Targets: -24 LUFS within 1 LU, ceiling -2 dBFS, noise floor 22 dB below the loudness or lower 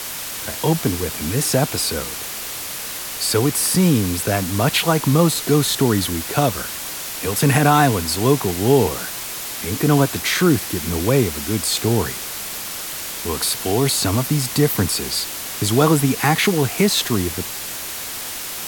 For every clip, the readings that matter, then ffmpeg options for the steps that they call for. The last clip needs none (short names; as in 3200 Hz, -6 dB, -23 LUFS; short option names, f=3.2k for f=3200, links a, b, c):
noise floor -29 dBFS; noise floor target -41 dBFS; loudness -19.0 LUFS; peak -2.5 dBFS; loudness target -24.0 LUFS
-> -af "afftdn=nr=12:nf=-29"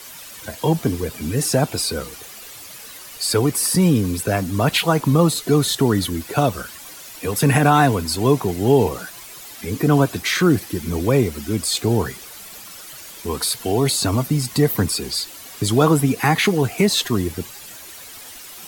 noise floor -39 dBFS; noise floor target -41 dBFS
-> -af "afftdn=nr=6:nf=-39"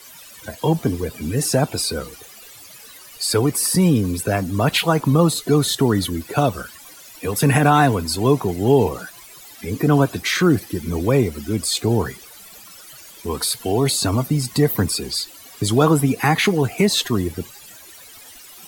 noise floor -43 dBFS; loudness -19.5 LUFS; peak -3.0 dBFS; loudness target -24.0 LUFS
-> -af "volume=-4.5dB"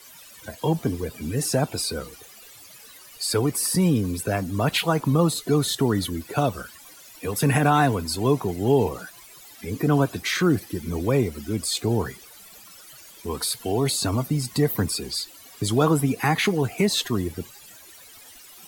loudness -24.0 LUFS; peak -7.5 dBFS; noise floor -47 dBFS